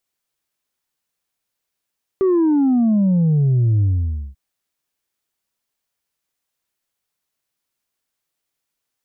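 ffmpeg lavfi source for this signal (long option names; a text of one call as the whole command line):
ffmpeg -f lavfi -i "aevalsrc='0.224*clip((2.14-t)/0.53,0,1)*tanh(1.26*sin(2*PI*390*2.14/log(65/390)*(exp(log(65/390)*t/2.14)-1)))/tanh(1.26)':duration=2.14:sample_rate=44100" out.wav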